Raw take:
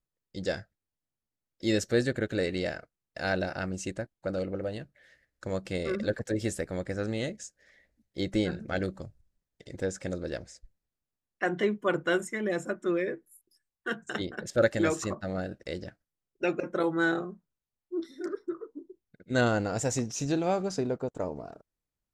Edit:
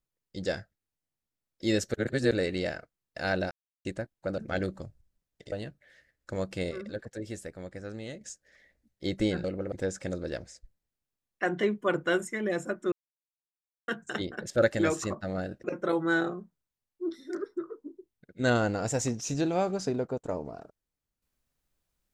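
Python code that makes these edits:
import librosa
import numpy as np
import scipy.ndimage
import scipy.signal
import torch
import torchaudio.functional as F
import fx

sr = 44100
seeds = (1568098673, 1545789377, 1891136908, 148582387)

y = fx.edit(x, sr, fx.reverse_span(start_s=1.94, length_s=0.37),
    fx.silence(start_s=3.51, length_s=0.34),
    fx.swap(start_s=4.38, length_s=0.28, other_s=8.58, other_length_s=1.14),
    fx.clip_gain(start_s=5.85, length_s=1.5, db=-8.0),
    fx.silence(start_s=12.92, length_s=0.96),
    fx.cut(start_s=15.64, length_s=0.91), tone=tone)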